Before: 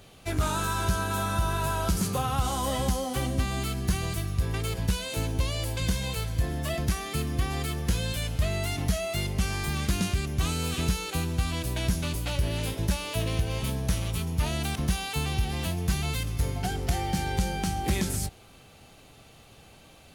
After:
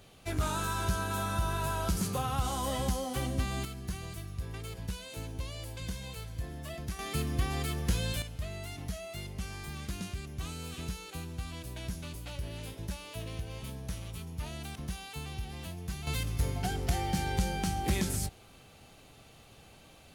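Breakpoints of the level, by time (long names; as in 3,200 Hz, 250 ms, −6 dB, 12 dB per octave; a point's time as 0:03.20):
−4.5 dB
from 0:03.65 −11 dB
from 0:06.99 −3 dB
from 0:08.22 −11.5 dB
from 0:16.07 −3 dB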